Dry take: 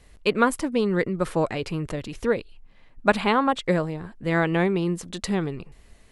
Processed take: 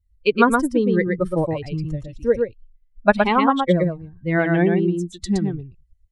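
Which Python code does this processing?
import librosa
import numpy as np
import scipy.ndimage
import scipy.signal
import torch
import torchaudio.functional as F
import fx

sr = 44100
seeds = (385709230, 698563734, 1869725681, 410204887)

y = fx.bin_expand(x, sr, power=2.0)
y = fx.high_shelf(y, sr, hz=2700.0, db=-8.0)
y = y + 10.0 ** (-4.0 / 20.0) * np.pad(y, (int(118 * sr / 1000.0), 0))[:len(y)]
y = y * librosa.db_to_amplitude(7.5)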